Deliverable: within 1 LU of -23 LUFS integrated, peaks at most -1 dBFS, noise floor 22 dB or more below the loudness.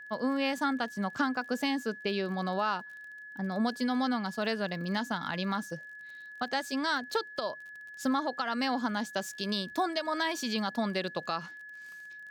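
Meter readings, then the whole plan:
tick rate 30 per s; steady tone 1.7 kHz; tone level -44 dBFS; loudness -32.0 LUFS; peak level -18.5 dBFS; loudness target -23.0 LUFS
-> de-click; band-stop 1.7 kHz, Q 30; trim +9 dB

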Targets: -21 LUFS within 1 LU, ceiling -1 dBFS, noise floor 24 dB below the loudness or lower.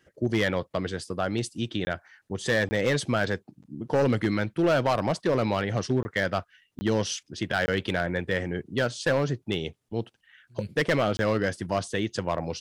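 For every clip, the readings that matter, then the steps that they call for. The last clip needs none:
clipped samples 1.0%; clipping level -17.0 dBFS; dropouts 6; longest dropout 20 ms; loudness -27.5 LUFS; peak level -17.0 dBFS; loudness target -21.0 LUFS
-> clip repair -17 dBFS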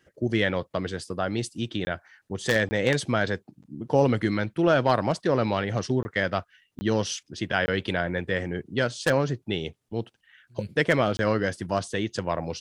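clipped samples 0.0%; dropouts 6; longest dropout 20 ms
-> interpolate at 1.85/2.69/6.03/6.79/7.66/11.17 s, 20 ms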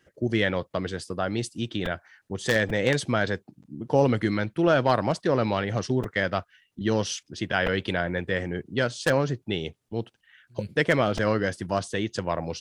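dropouts 0; loudness -26.5 LUFS; peak level -8.0 dBFS; loudness target -21.0 LUFS
-> trim +5.5 dB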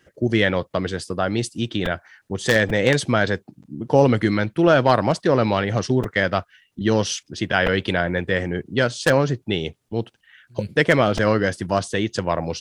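loudness -21.0 LUFS; peak level -2.5 dBFS; noise floor -67 dBFS

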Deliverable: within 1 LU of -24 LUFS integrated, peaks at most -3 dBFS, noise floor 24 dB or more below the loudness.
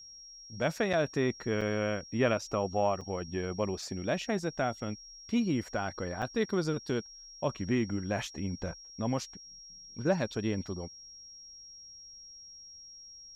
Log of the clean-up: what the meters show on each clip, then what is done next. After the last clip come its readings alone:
dropouts 4; longest dropout 5.5 ms; steady tone 5.6 kHz; tone level -48 dBFS; loudness -33.0 LUFS; peak level -14.0 dBFS; loudness target -24.0 LUFS
-> interpolate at 0.93/1.61/3.01/6.22 s, 5.5 ms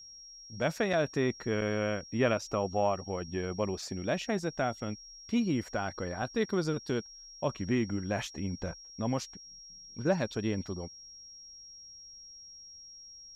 dropouts 0; steady tone 5.6 kHz; tone level -48 dBFS
-> band-stop 5.6 kHz, Q 30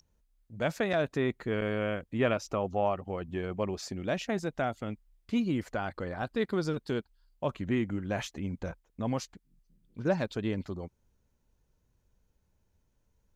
steady tone not found; loudness -33.0 LUFS; peak level -14.0 dBFS; loudness target -24.0 LUFS
-> trim +9 dB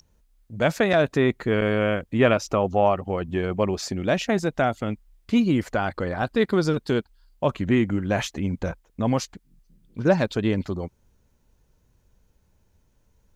loudness -24.0 LUFS; peak level -5.0 dBFS; noise floor -65 dBFS

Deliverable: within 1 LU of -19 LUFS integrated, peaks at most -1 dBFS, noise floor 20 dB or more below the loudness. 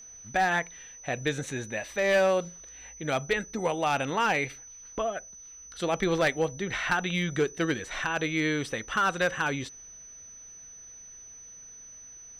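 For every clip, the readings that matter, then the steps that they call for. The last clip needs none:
clipped samples 0.5%; clipping level -18.0 dBFS; steady tone 6 kHz; tone level -45 dBFS; loudness -28.5 LUFS; peak level -18.0 dBFS; loudness target -19.0 LUFS
-> clip repair -18 dBFS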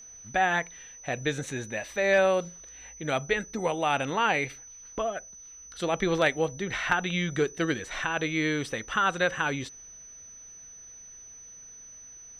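clipped samples 0.0%; steady tone 6 kHz; tone level -45 dBFS
-> band-stop 6 kHz, Q 30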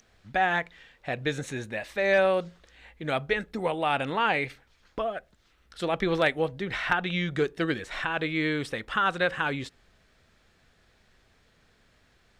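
steady tone not found; loudness -28.0 LUFS; peak level -9.0 dBFS; loudness target -19.0 LUFS
-> trim +9 dB; peak limiter -1 dBFS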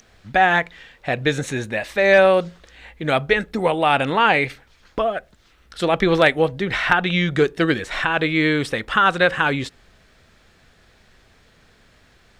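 loudness -19.0 LUFS; peak level -1.0 dBFS; noise floor -56 dBFS

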